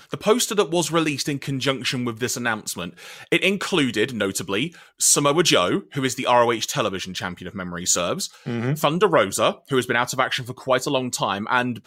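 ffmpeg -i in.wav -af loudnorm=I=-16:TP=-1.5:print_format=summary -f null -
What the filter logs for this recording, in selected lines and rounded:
Input Integrated:    -21.6 LUFS
Input True Peak:      -4.6 dBTP
Input LRA:             3.2 LU
Input Threshold:     -31.7 LUFS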